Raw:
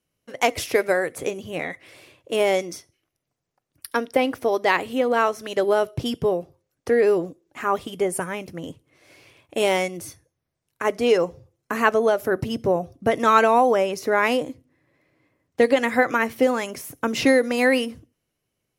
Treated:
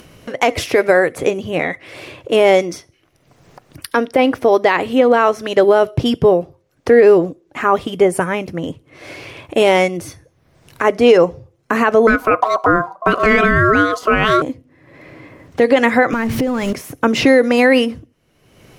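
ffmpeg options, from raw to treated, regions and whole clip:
-filter_complex "[0:a]asettb=1/sr,asplit=3[a][b][c];[a]atrim=end=12.074[d];[b]atrim=start=12.07:end=14.42,asetpts=PTS-STARTPTS,afade=t=in:d=0.004:c=qsin,afade=t=out:st=2.346:d=0.004:c=qsin,equalizer=f=85:t=o:w=2.4:g=9,aeval=exprs='val(0)*sin(2*PI*870*n/s)':c=same[e];[c]atrim=start=14.416[f];[d][e]acrossfade=d=0.004:c1=hsin:c2=qsin[g];[g][f]acrossfade=d=0.004:c1=qsin:c2=hsin,asettb=1/sr,asplit=3[h][i][j];[h]atrim=end=16.134[k];[i]atrim=start=16.13:end=16.73,asetpts=PTS-STARTPTS,afade=t=in:d=0.004:c=qsin,afade=t=out:st=0.596:d=0.004:c=qsin,aeval=exprs='val(0)+0.5*0.0282*sgn(val(0))':c=same,bass=f=250:g=15,treble=f=4k:g=3,acompressor=threshold=-24dB:ratio=10:attack=3.2:release=140:knee=1:detection=peak[l];[j]atrim=start=16.726[m];[k][l]acrossfade=d=0.004:c1=hsin:c2=qsin[n];[n][m]acrossfade=d=0.004:c1=qsin:c2=hsin,highshelf=f=5.8k:g=-12,acompressor=mode=upward:threshold=-34dB:ratio=2.5,alimiter=level_in=11.5dB:limit=-1dB:release=50:level=0:latency=1,volume=-1dB"

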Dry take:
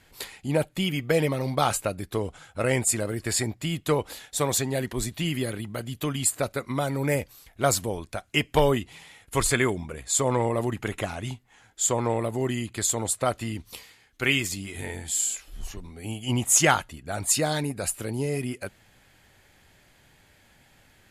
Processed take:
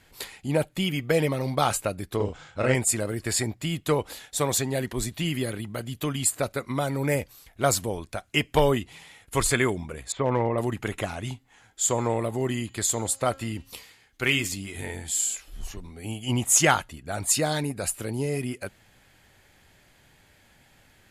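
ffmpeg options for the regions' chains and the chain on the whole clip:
-filter_complex "[0:a]asettb=1/sr,asplit=3[a][b][c];[a]atrim=end=2.164[d];[b]atrim=start=2.16:end=2.75,asetpts=PTS-STARTPTS,afade=t=in:d=0.004:c=qsin,afade=t=out:st=0.586:d=0.004:c=qsin,lowpass=f=6.8k:w=0.5412,lowpass=f=6.8k:w=1.3066,asplit=2[e][f];[f]adelay=39,volume=-3dB[g];[e][g]amix=inputs=2:normalize=0,atrim=end_sample=26019[h];[c]atrim=start=2.746[i];[d][h]acrossfade=d=0.004:c1=hsin:c2=qsin[j];[j][i]acrossfade=d=0.004:c1=qsin:c2=hsin,asettb=1/sr,asplit=3[k][l][m];[k]atrim=end=10.124[n];[l]atrim=start=10.12:end=10.58,asetpts=PTS-STARTPTS,afade=t=in:d=0.004:c=qsin,afade=t=out:st=0.456:d=0.004:c=qsin,lowpass=f=2.7k:w=0.5412,lowpass=f=2.7k:w=1.3066,asoftclip=type=hard:threshold=-15dB[o];[m]atrim=start=10.576[p];[n][o]acrossfade=d=0.004:c1=hsin:c2=qsin[q];[q][p]acrossfade=d=0.004:c1=qsin:c2=hsin,asettb=1/sr,asplit=3[r][s][t];[r]atrim=end=11.334[u];[s]atrim=start=11.33:end=14.54,asetpts=PTS-STARTPTS,afade=t=in:d=0.004:c=qsin,afade=t=out:st=3.206:d=0.004:c=qsin,bandreject=f=269.7:t=h:w=4,bandreject=f=539.4:t=h:w=4,bandreject=f=809.1:t=h:w=4,bandreject=f=1.0788k:t=h:w=4,bandreject=f=1.3485k:t=h:w=4,bandreject=f=1.6182k:t=h:w=4,bandreject=f=1.8879k:t=h:w=4,bandreject=f=2.1576k:t=h:w=4,bandreject=f=2.4273k:t=h:w=4,bandreject=f=2.697k:t=h:w=4,bandreject=f=2.9667k:t=h:w=4,bandreject=f=3.2364k:t=h:w=4,bandreject=f=3.5061k:t=h:w=4,bandreject=f=3.7758k:t=h:w=4,bandreject=f=4.0455k:t=h:w=4,bandreject=f=4.3152k:t=h:w=4,bandreject=f=4.5849k:t=h:w=4,bandreject=f=4.8546k:t=h:w=4,bandreject=f=5.1243k:t=h:w=4,bandreject=f=5.394k:t=h:w=4,bandreject=f=5.6637k:t=h:w=4,bandreject=f=5.9334k:t=h:w=4,bandreject=f=6.2031k:t=h:w=4,bandreject=f=6.4728k:t=h:w=4,bandreject=f=6.7425k:t=h:w=4,bandreject=f=7.0122k:t=h:w=4,bandreject=f=7.2819k:t=h:w=4,bandreject=f=7.5516k:t=h:w=4,asoftclip=type=hard:threshold=-11.5dB[v];[t]atrim=start=14.536[w];[u][v]acrossfade=d=0.004:c1=hsin:c2=qsin[x];[x][w]acrossfade=d=0.004:c1=qsin:c2=hsin"

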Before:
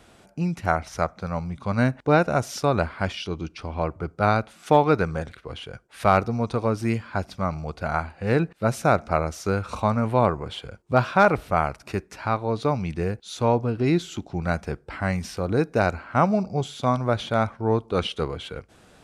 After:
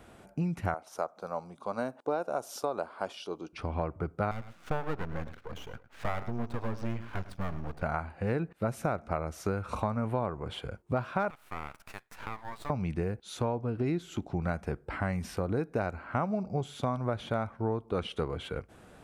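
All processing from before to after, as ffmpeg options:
-filter_complex "[0:a]asettb=1/sr,asplit=3[a][b][c];[a]atrim=end=0.744[d];[b]atrim=start=0.74:end=3.53,asetpts=PTS-STARTPTS,afade=t=in:d=0.004:c=qsin,afade=t=out:st=2.786:d=0.004:c=qsin,highpass=460,equalizer=f=2k:w=1.5:g=-15[e];[c]atrim=start=3.526[f];[d][e]acrossfade=d=0.004:c1=hsin:c2=qsin[g];[g][f]acrossfade=d=0.004:c1=qsin:c2=hsin,asettb=1/sr,asplit=3[h][i][j];[h]atrim=end=4.314[k];[i]atrim=start=4.31:end=7.83,asetpts=PTS-STARTPTS,afade=t=in:d=0.004:c=qsin,afade=t=out:st=3.516:d=0.004:c=qsin,lowpass=f=6.2k:w=0.5412,lowpass=f=6.2k:w=1.3066,aeval=exprs='max(val(0),0)':c=same,aecho=1:1:106:0.15,atrim=end_sample=155232[l];[j]atrim=start=7.826[m];[k][l]acrossfade=d=0.004:c1=hsin:c2=qsin[n];[n][m]acrossfade=d=0.004:c1=qsin:c2=hsin,asettb=1/sr,asplit=3[o][p][q];[o]atrim=end=11.304[r];[p]atrim=start=11.3:end=12.7,asetpts=PTS-STARTPTS,afade=t=in:d=0.004:c=qsin,afade=t=out:st=1.396:d=0.004:c=qsin,highpass=f=850:w=0.5412,highpass=f=850:w=1.3066,aeval=exprs='max(val(0),0)':c=same,acompressor=threshold=-31dB:ratio=4:attack=3.2:release=140:knee=1:detection=peak[s];[q]atrim=start=12.696[t];[r][s]acrossfade=d=0.004:c1=hsin:c2=qsin[u];[u][t]acrossfade=d=0.004:c1=qsin:c2=hsin,equalizer=f=5k:w=0.68:g=-8.5,acompressor=threshold=-28dB:ratio=5"

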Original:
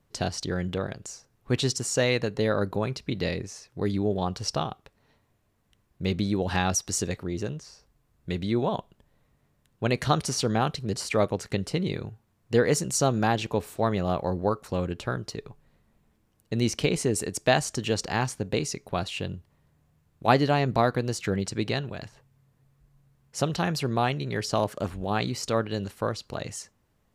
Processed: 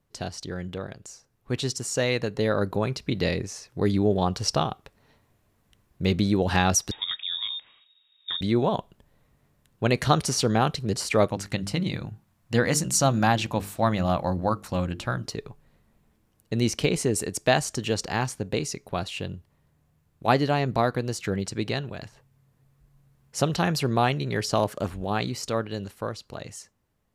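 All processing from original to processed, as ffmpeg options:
-filter_complex "[0:a]asettb=1/sr,asplit=3[a][b][c];[a]atrim=end=6.914[d];[b]atrim=start=6.91:end=8.41,asetpts=PTS-STARTPTS,afade=t=in:d=0.004:c=qsin,afade=t=out:st=1.496:d=0.004:c=qsin,lowpass=f=3.2k:t=q:w=0.5098,lowpass=f=3.2k:t=q:w=0.6013,lowpass=f=3.2k:t=q:w=0.9,lowpass=f=3.2k:t=q:w=2.563,afreqshift=-3800,acompressor=threshold=-35dB:ratio=1.5:attack=3.2:release=140:knee=1:detection=peak[e];[c]atrim=start=8.406[f];[d][e]acrossfade=d=0.004:c1=hsin:c2=qsin[g];[g][f]acrossfade=d=0.004:c1=qsin:c2=hsin,asettb=1/sr,asplit=3[h][i][j];[h]atrim=end=11.304[k];[i]atrim=start=11.3:end=15.26,asetpts=PTS-STARTPTS,afade=t=in:d=0.004:c=qsin,afade=t=out:st=3.956:d=0.004:c=qsin,equalizer=f=420:w=4.1:g=-13.5,bandreject=f=50:t=h:w=6,bandreject=f=100:t=h:w=6,bandreject=f=150:t=h:w=6,bandreject=f=200:t=h:w=6,bandreject=f=250:t=h:w=6,bandreject=f=300:t=h:w=6,bandreject=f=350:t=h:w=6,bandreject=f=400:t=h:w=6,bandreject=f=450:t=h:w=6[l];[j]atrim=start=15.256[m];[k][l]acrossfade=d=0.004:c1=hsin:c2=qsin[n];[n][m]acrossfade=d=0.004:c1=qsin:c2=hsin,equalizer=f=12k:w=1.5:g=2.5,dynaudnorm=f=400:g=13:m=11.5dB,volume=-4.5dB"

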